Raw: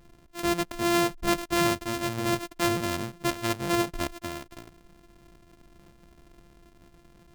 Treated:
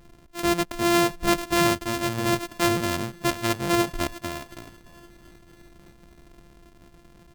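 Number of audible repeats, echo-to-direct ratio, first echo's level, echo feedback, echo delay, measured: 2, -22.0 dB, -23.0 dB, 48%, 620 ms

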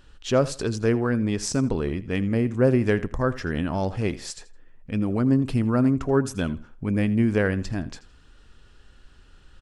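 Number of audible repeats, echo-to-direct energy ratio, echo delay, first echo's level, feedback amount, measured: 2, -17.5 dB, 82 ms, -17.5 dB, 24%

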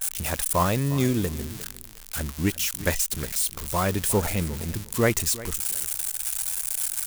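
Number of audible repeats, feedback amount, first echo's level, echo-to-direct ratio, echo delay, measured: 2, 17%, -17.0 dB, -17.0 dB, 355 ms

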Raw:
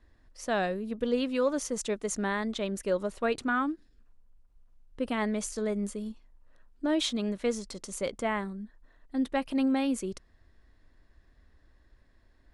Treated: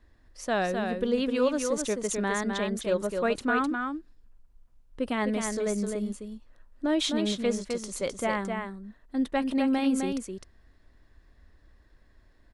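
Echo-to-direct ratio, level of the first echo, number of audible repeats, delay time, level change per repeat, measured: -5.0 dB, -5.0 dB, 1, 257 ms, no regular repeats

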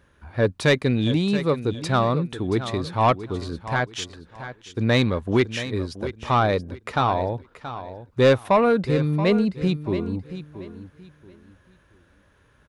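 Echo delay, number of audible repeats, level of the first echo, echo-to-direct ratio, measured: 678 ms, 2, -12.5 dB, -12.0 dB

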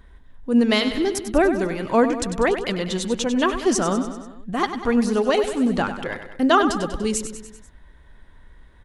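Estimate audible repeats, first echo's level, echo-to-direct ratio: 5, -10.0 dB, -8.0 dB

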